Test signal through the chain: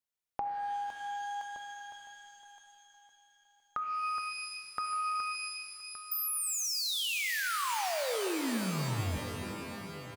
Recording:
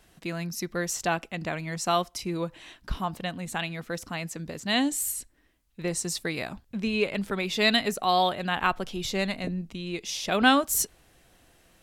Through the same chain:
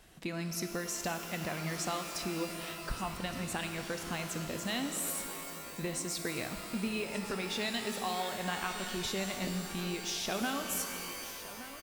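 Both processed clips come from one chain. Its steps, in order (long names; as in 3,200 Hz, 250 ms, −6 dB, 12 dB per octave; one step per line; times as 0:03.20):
downward compressor, threshold −34 dBFS
on a send: single-tap delay 1,169 ms −15 dB
on the sum: reverb with rising layers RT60 2.8 s, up +12 semitones, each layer −2 dB, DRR 6 dB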